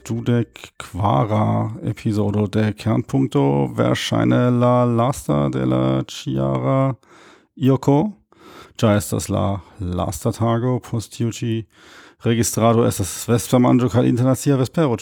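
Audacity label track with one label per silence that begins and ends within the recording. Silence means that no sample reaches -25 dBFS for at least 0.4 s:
6.920000	7.610000	silence
8.100000	8.790000	silence
11.610000	12.250000	silence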